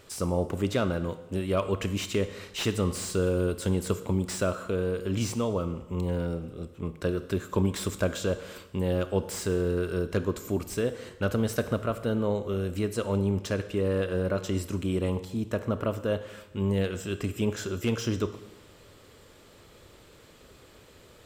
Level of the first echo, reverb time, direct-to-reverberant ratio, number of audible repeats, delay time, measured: none, 1.0 s, 10.5 dB, none, none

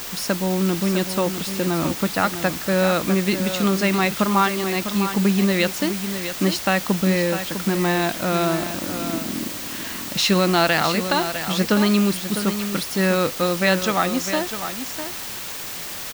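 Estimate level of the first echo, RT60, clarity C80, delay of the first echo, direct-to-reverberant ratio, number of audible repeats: -9.5 dB, none, none, 0.652 s, none, 1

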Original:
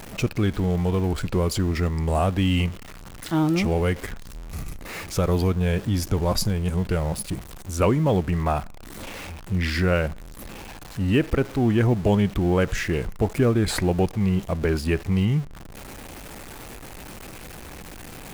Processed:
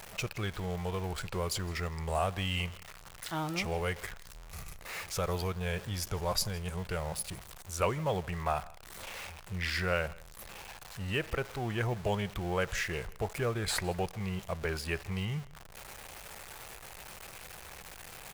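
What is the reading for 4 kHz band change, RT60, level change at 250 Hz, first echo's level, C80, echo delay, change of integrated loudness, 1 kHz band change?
-4.5 dB, none, -16.5 dB, -22.5 dB, none, 0.161 s, -11.5 dB, -6.0 dB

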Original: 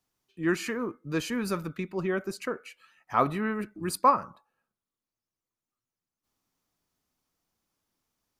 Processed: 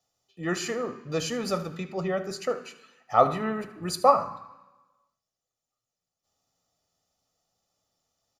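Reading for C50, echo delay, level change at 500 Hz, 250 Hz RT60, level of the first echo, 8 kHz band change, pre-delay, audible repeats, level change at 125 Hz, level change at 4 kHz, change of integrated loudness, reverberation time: 13.0 dB, 76 ms, +5.0 dB, 1.0 s, -16.5 dB, +3.5 dB, 3 ms, 1, +1.0 dB, +5.0 dB, +2.0 dB, 1.1 s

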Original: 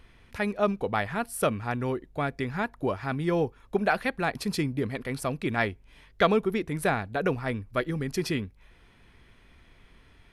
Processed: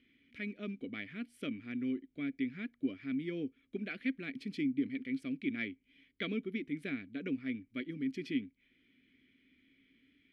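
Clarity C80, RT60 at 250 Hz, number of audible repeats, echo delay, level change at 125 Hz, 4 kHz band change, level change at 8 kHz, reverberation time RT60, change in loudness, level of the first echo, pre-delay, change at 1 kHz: none, none, none, none, -16.5 dB, -10.5 dB, under -25 dB, none, -10.0 dB, none, none, -28.0 dB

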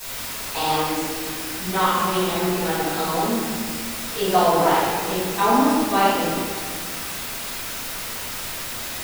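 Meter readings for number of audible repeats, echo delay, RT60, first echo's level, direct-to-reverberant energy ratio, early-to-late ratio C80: none, none, 1.8 s, none, -13.5 dB, -0.5 dB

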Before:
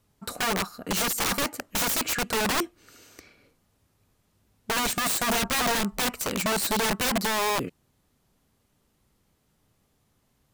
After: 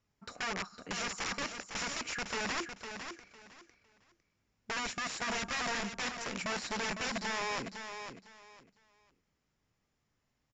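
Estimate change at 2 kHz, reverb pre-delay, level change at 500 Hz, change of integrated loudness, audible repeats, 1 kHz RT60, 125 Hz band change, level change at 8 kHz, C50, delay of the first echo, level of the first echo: -7.0 dB, none, -11.5 dB, -11.0 dB, 3, none, -11.5 dB, -12.5 dB, none, 0.505 s, -8.0 dB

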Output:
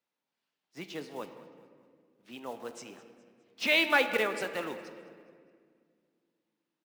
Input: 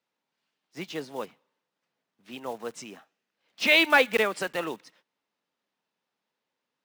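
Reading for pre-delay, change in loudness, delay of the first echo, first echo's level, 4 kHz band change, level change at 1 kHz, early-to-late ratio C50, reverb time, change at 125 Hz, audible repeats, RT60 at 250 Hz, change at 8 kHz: 3 ms, -6.0 dB, 0.207 s, -18.5 dB, -5.0 dB, -5.0 dB, 9.5 dB, 2.0 s, -5.0 dB, 3, 2.9 s, -5.0 dB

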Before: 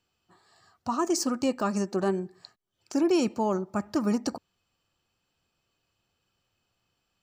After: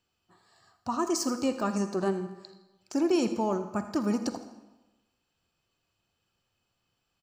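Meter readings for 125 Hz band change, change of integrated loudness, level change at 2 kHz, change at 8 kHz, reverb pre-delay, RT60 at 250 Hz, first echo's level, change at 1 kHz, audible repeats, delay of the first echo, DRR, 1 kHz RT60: -1.5 dB, -1.5 dB, -1.5 dB, -1.5 dB, 39 ms, 1.1 s, -16.0 dB, -1.5 dB, 1, 82 ms, 9.5 dB, 1.1 s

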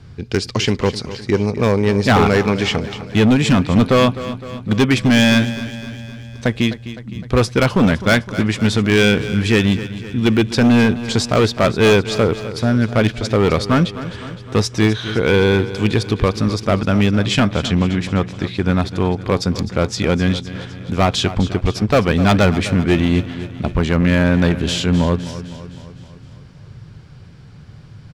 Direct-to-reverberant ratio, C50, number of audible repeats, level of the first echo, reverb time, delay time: none, none, 5, -14.0 dB, none, 0.256 s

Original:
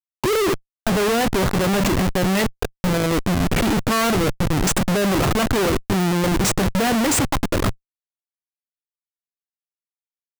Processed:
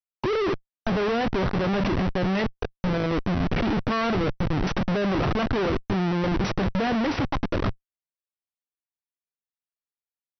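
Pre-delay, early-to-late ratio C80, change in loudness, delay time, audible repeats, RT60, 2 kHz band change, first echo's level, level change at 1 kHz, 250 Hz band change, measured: none, none, -5.5 dB, none, none, none, -6.0 dB, none, -5.0 dB, -4.5 dB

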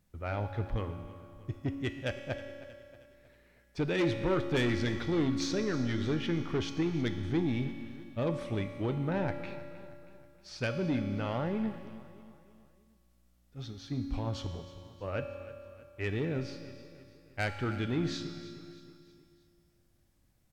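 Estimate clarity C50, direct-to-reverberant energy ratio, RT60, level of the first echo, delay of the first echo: 7.0 dB, 5.5 dB, 2.5 s, -17.0 dB, 0.316 s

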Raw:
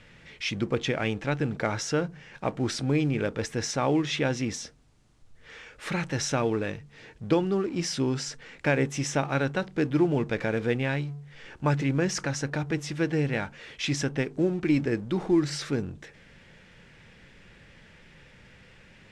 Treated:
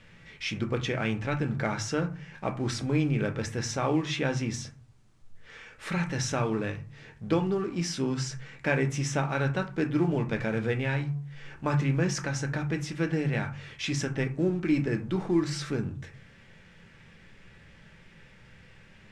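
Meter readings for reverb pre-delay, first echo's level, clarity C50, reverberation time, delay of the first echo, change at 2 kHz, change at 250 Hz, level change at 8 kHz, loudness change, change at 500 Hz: 5 ms, none, 14.0 dB, 0.45 s, none, -1.0 dB, -1.5 dB, -2.5 dB, -1.5 dB, -3.0 dB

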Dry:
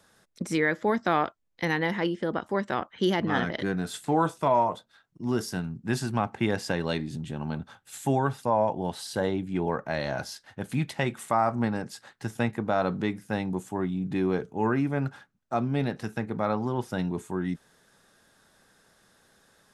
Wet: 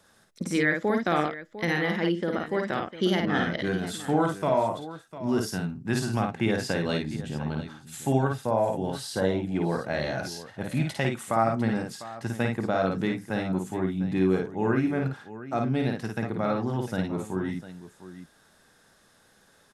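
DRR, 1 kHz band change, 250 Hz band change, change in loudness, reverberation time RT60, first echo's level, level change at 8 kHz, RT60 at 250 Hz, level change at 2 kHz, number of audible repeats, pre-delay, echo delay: none, -2.0 dB, +1.5 dB, +1.0 dB, none, -3.5 dB, +1.5 dB, none, +1.5 dB, 2, none, 53 ms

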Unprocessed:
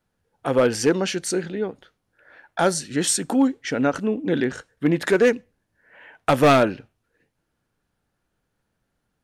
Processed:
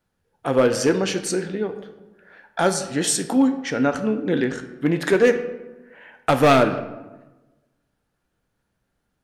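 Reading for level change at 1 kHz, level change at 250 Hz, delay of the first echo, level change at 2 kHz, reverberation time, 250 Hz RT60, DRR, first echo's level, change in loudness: +1.0 dB, +1.0 dB, none, +0.5 dB, 1.1 s, 1.3 s, 7.5 dB, none, +0.5 dB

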